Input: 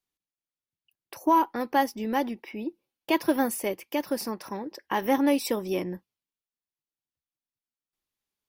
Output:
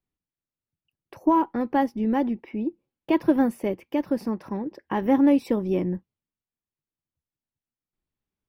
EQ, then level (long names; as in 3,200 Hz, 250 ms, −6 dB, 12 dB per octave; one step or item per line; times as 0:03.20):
bass and treble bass +4 dB, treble −13 dB
low-shelf EQ 480 Hz +10.5 dB
−3.5 dB